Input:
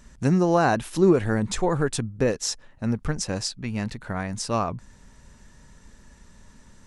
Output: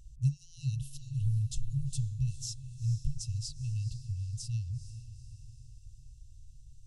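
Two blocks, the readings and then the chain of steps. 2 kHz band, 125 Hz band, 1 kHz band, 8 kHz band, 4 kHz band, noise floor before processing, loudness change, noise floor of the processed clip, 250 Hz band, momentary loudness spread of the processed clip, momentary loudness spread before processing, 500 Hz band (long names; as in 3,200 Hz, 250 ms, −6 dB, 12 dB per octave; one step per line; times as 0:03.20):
below −30 dB, −2.5 dB, below −40 dB, −11.0 dB, −12.5 dB, −53 dBFS, −11.0 dB, −53 dBFS, below −20 dB, 18 LU, 11 LU, below −40 dB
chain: high shelf with overshoot 2,100 Hz −10.5 dB, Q 3
feedback delay with all-pass diffusion 453 ms, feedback 49%, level −13 dB
brick-wall band-stop 140–2,600 Hz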